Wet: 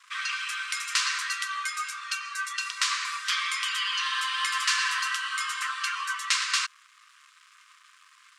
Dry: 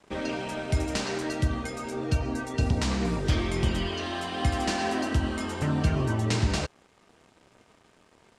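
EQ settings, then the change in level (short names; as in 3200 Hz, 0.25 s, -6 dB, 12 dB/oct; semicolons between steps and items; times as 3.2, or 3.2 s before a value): brick-wall FIR high-pass 1000 Hz; +8.0 dB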